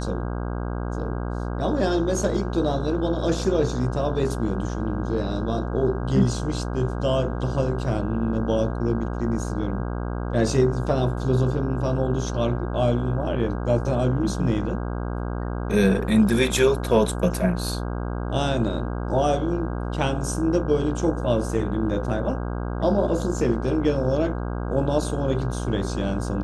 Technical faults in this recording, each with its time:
buzz 60 Hz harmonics 27 -28 dBFS

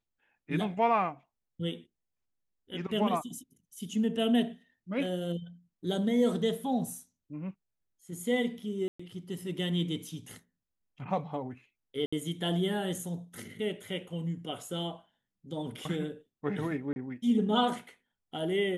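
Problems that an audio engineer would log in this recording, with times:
8.88–8.99 s: dropout 115 ms
12.06–12.12 s: dropout 65 ms
16.93–16.96 s: dropout 31 ms

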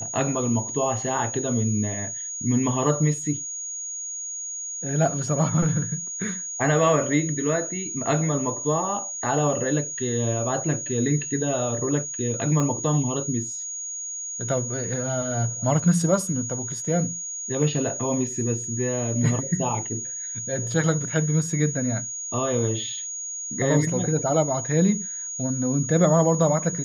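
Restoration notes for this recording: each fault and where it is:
whine 6.7 kHz -30 dBFS
12.60 s: pop -14 dBFS

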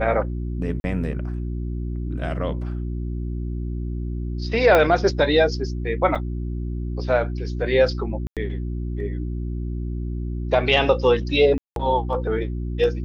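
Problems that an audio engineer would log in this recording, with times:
hum 60 Hz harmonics 6 -27 dBFS
0.80–0.84 s: dropout 41 ms
4.75 s: pop -6 dBFS
6.15–6.16 s: dropout 5.6 ms
8.27–8.37 s: dropout 97 ms
11.58–11.76 s: dropout 182 ms

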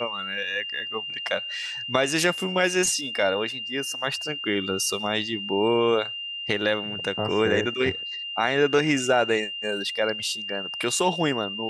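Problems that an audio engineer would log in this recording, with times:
whine 2.8 kHz -31 dBFS

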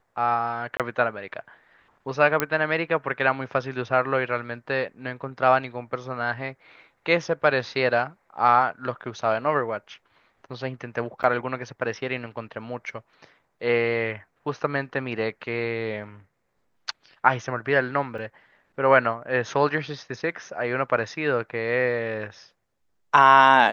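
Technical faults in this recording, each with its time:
0.77–0.80 s: dropout 27 ms
2.40 s: pop -5 dBFS
11.23–11.24 s: dropout 8.5 ms
18.18 s: dropout 4.6 ms

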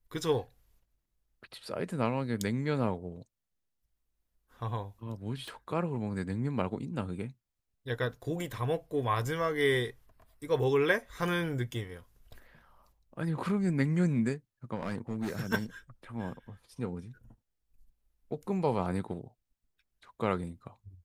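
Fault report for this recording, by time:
5.48 s: pop
14.75–15.47 s: clipped -28.5 dBFS

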